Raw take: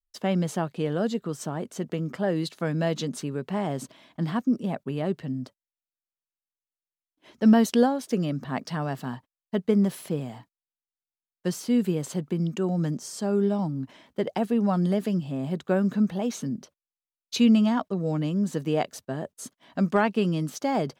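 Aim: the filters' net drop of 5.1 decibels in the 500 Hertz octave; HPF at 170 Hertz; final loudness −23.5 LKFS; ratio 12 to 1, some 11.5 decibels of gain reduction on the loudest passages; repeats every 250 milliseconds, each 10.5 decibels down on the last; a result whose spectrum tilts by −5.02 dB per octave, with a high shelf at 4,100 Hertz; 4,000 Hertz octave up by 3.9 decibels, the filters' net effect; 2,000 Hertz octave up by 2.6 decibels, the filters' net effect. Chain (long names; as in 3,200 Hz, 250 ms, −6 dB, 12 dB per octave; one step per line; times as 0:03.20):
high-pass filter 170 Hz
parametric band 500 Hz −6.5 dB
parametric band 2,000 Hz +3.5 dB
parametric band 4,000 Hz +8 dB
high-shelf EQ 4,100 Hz −7 dB
downward compressor 12 to 1, threshold −28 dBFS
repeating echo 250 ms, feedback 30%, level −10.5 dB
level +10.5 dB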